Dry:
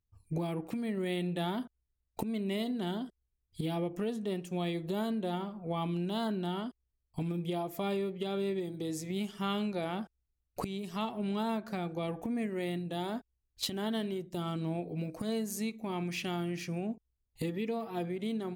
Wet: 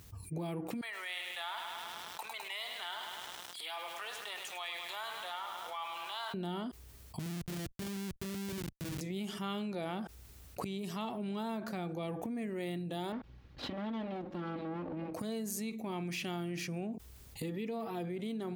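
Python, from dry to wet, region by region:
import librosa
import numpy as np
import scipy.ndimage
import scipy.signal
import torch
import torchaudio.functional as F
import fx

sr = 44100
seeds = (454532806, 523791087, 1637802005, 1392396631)

y = fx.chain(x, sr, fx.highpass(hz=980.0, slope=24),
    fx.high_shelf(hz=5000.0, db=-9.0),
    fx.echo_crushed(ms=104, feedback_pct=80, bits=10, wet_db=-8.0), at=(0.81, 6.34))
y = fx.chain(y, sr, fx.schmitt(flips_db=-33.0),
    fx.peak_eq(hz=810.0, db=-11.5, octaves=2.3),
    fx.upward_expand(threshold_db=-55.0, expansion=1.5), at=(7.19, 9.01))
y = fx.chain(y, sr, fx.lower_of_two(delay_ms=3.6),
    fx.air_absorb(metres=280.0), at=(13.12, 15.14))
y = scipy.signal.sosfilt(scipy.signal.butter(2, 78.0, 'highpass', fs=sr, output='sos'), y)
y = fx.high_shelf(y, sr, hz=12000.0, db=3.0)
y = fx.env_flatten(y, sr, amount_pct=70)
y = y * 10.0 ** (-5.5 / 20.0)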